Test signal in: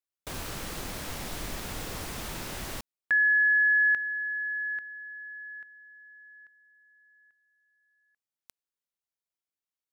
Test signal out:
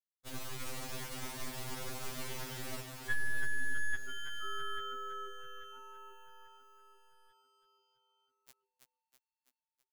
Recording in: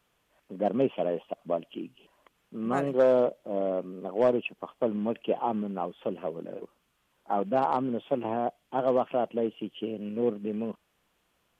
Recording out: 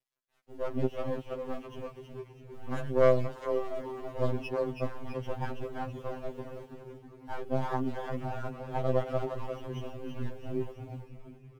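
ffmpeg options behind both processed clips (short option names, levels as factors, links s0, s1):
-filter_complex "[0:a]aeval=exprs='if(lt(val(0),0),0.251*val(0),val(0))':c=same,acontrast=80,acrusher=bits=8:mix=0:aa=0.5,asplit=9[s0][s1][s2][s3][s4][s5][s6][s7][s8];[s1]adelay=328,afreqshift=-100,volume=0.596[s9];[s2]adelay=656,afreqshift=-200,volume=0.335[s10];[s3]adelay=984,afreqshift=-300,volume=0.186[s11];[s4]adelay=1312,afreqshift=-400,volume=0.105[s12];[s5]adelay=1640,afreqshift=-500,volume=0.0589[s13];[s6]adelay=1968,afreqshift=-600,volume=0.0327[s14];[s7]adelay=2296,afreqshift=-700,volume=0.0184[s15];[s8]adelay=2624,afreqshift=-800,volume=0.0102[s16];[s0][s9][s10][s11][s12][s13][s14][s15][s16]amix=inputs=9:normalize=0,afftfilt=real='re*2.45*eq(mod(b,6),0)':imag='im*2.45*eq(mod(b,6),0)':win_size=2048:overlap=0.75,volume=0.376"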